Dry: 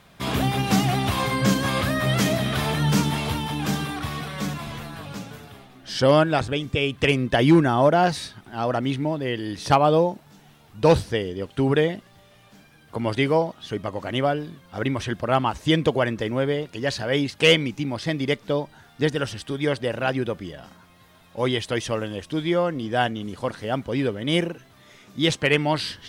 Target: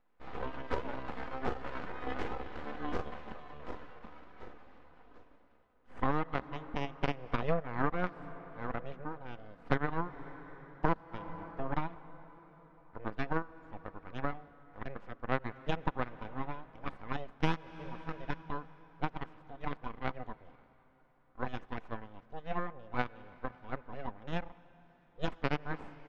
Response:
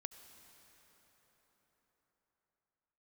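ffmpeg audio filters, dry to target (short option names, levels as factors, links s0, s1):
-filter_complex "[0:a]lowshelf=f=280:g=-5,aeval=exprs='abs(val(0))':c=same,aecho=1:1:4:0.36,aeval=exprs='0.668*(cos(1*acos(clip(val(0)/0.668,-1,1)))-cos(1*PI/2))+0.211*(cos(3*acos(clip(val(0)/0.668,-1,1)))-cos(3*PI/2))':c=same,lowpass=1400,asplit=2[s0][s1];[1:a]atrim=start_sample=2205[s2];[s1][s2]afir=irnorm=-1:irlink=0,volume=0.531[s3];[s0][s3]amix=inputs=2:normalize=0,acompressor=threshold=0.0224:ratio=4,volume=2"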